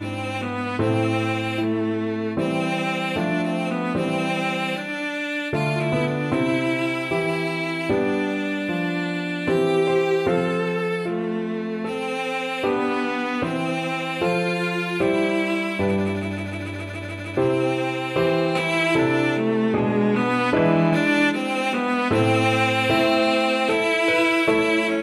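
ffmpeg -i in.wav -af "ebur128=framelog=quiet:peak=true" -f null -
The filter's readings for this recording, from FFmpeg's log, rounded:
Integrated loudness:
  I:         -22.1 LUFS
  Threshold: -32.1 LUFS
Loudness range:
  LRA:         4.4 LU
  Threshold: -42.3 LUFS
  LRA low:   -23.9 LUFS
  LRA high:  -19.6 LUFS
True peak:
  Peak:       -7.1 dBFS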